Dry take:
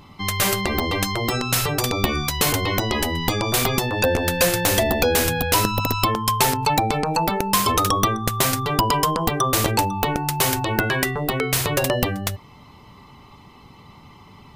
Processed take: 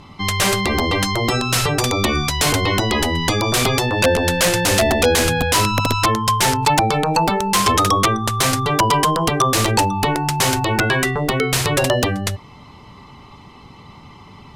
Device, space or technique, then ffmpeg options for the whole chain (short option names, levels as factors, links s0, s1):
overflowing digital effects unit: -af "aeval=exprs='(mod(3.55*val(0)+1,2)-1)/3.55':c=same,lowpass=9400,volume=1.68"